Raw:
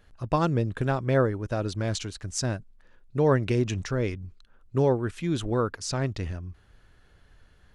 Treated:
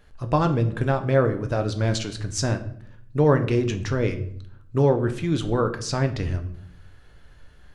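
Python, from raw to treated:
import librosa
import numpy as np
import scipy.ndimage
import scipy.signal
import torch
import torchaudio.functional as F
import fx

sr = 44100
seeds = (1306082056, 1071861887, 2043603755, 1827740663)

p1 = fx.dynamic_eq(x, sr, hz=9400.0, q=0.87, threshold_db=-51.0, ratio=4.0, max_db=-5)
p2 = fx.rider(p1, sr, range_db=10, speed_s=0.5)
p3 = p1 + (p2 * librosa.db_to_amplitude(-2.0))
p4 = fx.room_shoebox(p3, sr, seeds[0], volume_m3=110.0, walls='mixed', distance_m=0.37)
y = p4 * librosa.db_to_amplitude(-2.5)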